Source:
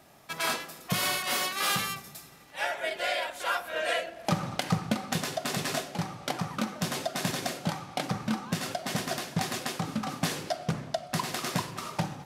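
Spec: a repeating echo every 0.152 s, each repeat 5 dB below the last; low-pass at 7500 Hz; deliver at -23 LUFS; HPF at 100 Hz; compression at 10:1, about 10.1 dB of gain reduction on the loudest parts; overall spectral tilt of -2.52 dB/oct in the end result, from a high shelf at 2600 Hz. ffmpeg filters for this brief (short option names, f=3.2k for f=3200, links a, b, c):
-af "highpass=100,lowpass=7.5k,highshelf=f=2.6k:g=9,acompressor=threshold=-33dB:ratio=10,aecho=1:1:152|304|456|608|760|912|1064:0.562|0.315|0.176|0.0988|0.0553|0.031|0.0173,volume=12dB"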